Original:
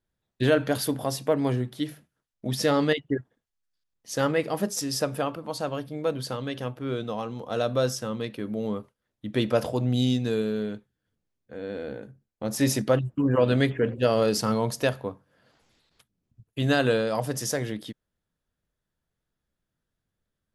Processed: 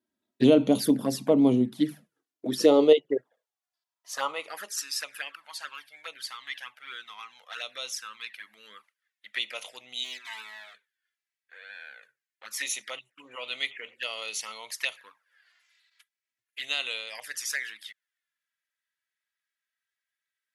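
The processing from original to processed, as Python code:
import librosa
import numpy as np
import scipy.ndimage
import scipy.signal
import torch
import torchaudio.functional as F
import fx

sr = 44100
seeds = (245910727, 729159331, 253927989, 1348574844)

y = fx.lower_of_two(x, sr, delay_ms=3.1, at=(10.03, 10.73), fade=0.02)
y = fx.env_flanger(y, sr, rest_ms=3.1, full_db=-21.5)
y = fx.filter_sweep_highpass(y, sr, from_hz=220.0, to_hz=1900.0, start_s=2.0, end_s=5.04, q=2.9)
y = y * 10.0 ** (1.0 / 20.0)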